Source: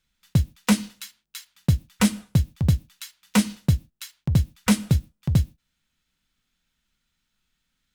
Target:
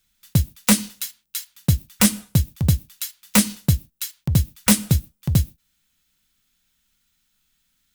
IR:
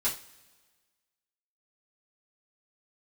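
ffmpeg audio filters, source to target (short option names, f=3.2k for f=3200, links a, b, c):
-af "aemphasis=mode=production:type=50kf,aeval=exprs='(mod(2*val(0)+1,2)-1)/2':c=same,volume=1.5dB"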